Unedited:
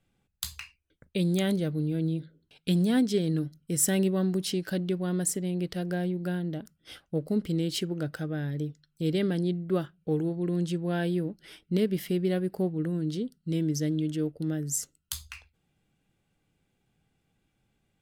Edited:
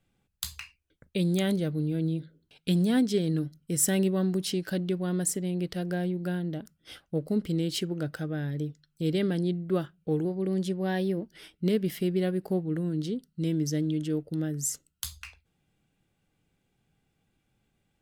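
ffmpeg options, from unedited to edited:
-filter_complex "[0:a]asplit=3[s0][s1][s2];[s0]atrim=end=10.254[s3];[s1]atrim=start=10.25:end=11.41,asetpts=PTS-STARTPTS,asetrate=47628,aresample=44100[s4];[s2]atrim=start=11.406[s5];[s3][s4]acrossfade=d=0.004:c1=hsin:c2=hsin[s6];[s6][s5]acrossfade=d=0.004:c1=hsin:c2=hsin"

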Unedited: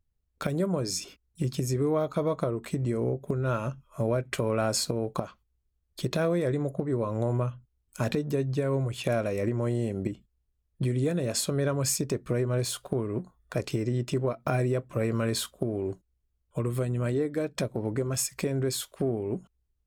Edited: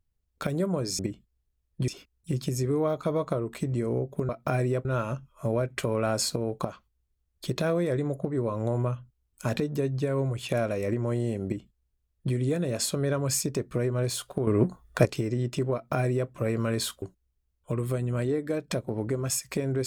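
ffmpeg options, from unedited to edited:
-filter_complex "[0:a]asplit=8[s0][s1][s2][s3][s4][s5][s6][s7];[s0]atrim=end=0.992[s8];[s1]atrim=start=9.998:end=10.892[s9];[s2]atrim=start=0.988:end=3.402[s10];[s3]atrim=start=14.288:end=14.852[s11];[s4]atrim=start=3.398:end=13.022[s12];[s5]atrim=start=13.018:end=13.602,asetpts=PTS-STARTPTS,volume=2.82[s13];[s6]atrim=start=13.598:end=15.572[s14];[s7]atrim=start=15.888[s15];[s8][s9]acrossfade=d=0.004:c1=hsin:c2=hsin[s16];[s16][s10]acrossfade=d=0.004:c1=hsin:c2=hsin[s17];[s17][s11]acrossfade=d=0.004:c1=hsin:c2=hsin[s18];[s18][s12]acrossfade=d=0.004:c1=hsin:c2=hsin[s19];[s19][s13]acrossfade=d=0.004:c1=hsin:c2=hsin[s20];[s20][s14]acrossfade=d=0.004:c1=hsin:c2=hsin[s21];[s21][s15]acrossfade=d=0.004:c1=hsin:c2=hsin"

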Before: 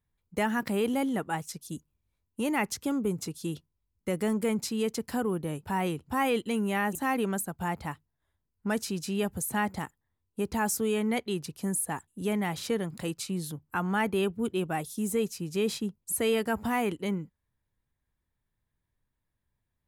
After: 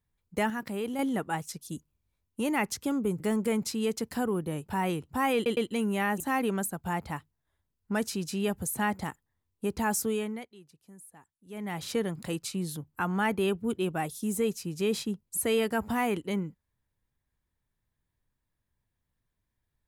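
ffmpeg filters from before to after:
-filter_complex "[0:a]asplit=8[s0][s1][s2][s3][s4][s5][s6][s7];[s0]atrim=end=0.502[s8];[s1]atrim=start=0.498:end=0.992,asetpts=PTS-STARTPTS,volume=0.531[s9];[s2]atrim=start=0.988:end=3.202[s10];[s3]atrim=start=4.168:end=6.432[s11];[s4]atrim=start=6.318:end=6.432[s12];[s5]atrim=start=6.318:end=11.23,asetpts=PTS-STARTPTS,afade=t=out:st=4.482:d=0.43:silence=0.0891251[s13];[s6]atrim=start=11.23:end=12.22,asetpts=PTS-STARTPTS,volume=0.0891[s14];[s7]atrim=start=12.22,asetpts=PTS-STARTPTS,afade=t=in:d=0.43:silence=0.0891251[s15];[s8][s9]acrossfade=d=0.004:c1=hsin:c2=hsin[s16];[s16][s10]acrossfade=d=0.004:c1=hsin:c2=hsin[s17];[s17][s11]acrossfade=d=0.004:c1=hsin:c2=hsin[s18];[s18][s12]acrossfade=d=0.004:c1=hsin:c2=hsin[s19];[s13][s14][s15]concat=n=3:v=0:a=1[s20];[s19][s20]acrossfade=d=0.004:c1=hsin:c2=hsin"

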